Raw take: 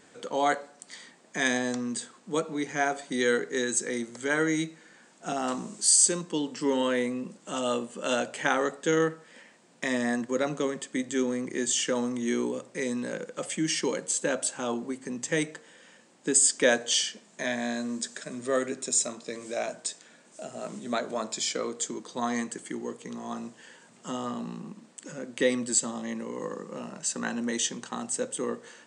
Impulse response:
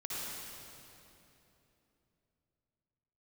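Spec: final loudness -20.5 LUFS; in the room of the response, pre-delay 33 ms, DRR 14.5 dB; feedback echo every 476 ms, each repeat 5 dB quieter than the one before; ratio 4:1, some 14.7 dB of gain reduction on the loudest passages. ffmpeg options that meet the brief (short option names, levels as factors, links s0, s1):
-filter_complex "[0:a]acompressor=threshold=0.0178:ratio=4,aecho=1:1:476|952|1428|1904|2380|2856|3332:0.562|0.315|0.176|0.0988|0.0553|0.031|0.0173,asplit=2[s0][s1];[1:a]atrim=start_sample=2205,adelay=33[s2];[s1][s2]afir=irnorm=-1:irlink=0,volume=0.133[s3];[s0][s3]amix=inputs=2:normalize=0,volume=6.31"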